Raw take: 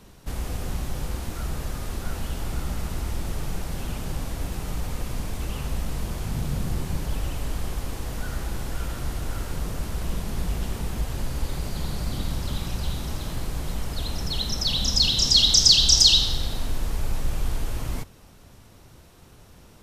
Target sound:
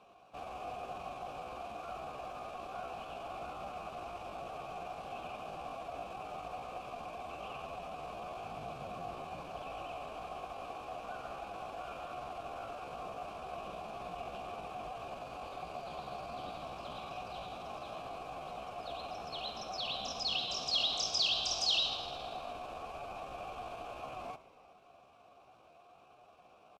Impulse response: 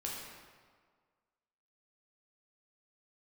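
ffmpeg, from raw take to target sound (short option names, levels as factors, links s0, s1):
-filter_complex "[0:a]asplit=3[s0][s1][s2];[s0]bandpass=f=730:t=q:w=8,volume=1[s3];[s1]bandpass=f=1090:t=q:w=8,volume=0.501[s4];[s2]bandpass=f=2440:t=q:w=8,volume=0.355[s5];[s3][s4][s5]amix=inputs=3:normalize=0,atempo=0.74,asplit=6[s6][s7][s8][s9][s10][s11];[s7]adelay=104,afreqshift=-69,volume=0.112[s12];[s8]adelay=208,afreqshift=-138,volume=0.0684[s13];[s9]adelay=312,afreqshift=-207,volume=0.0417[s14];[s10]adelay=416,afreqshift=-276,volume=0.0254[s15];[s11]adelay=520,afreqshift=-345,volume=0.0155[s16];[s6][s12][s13][s14][s15][s16]amix=inputs=6:normalize=0,volume=2.11"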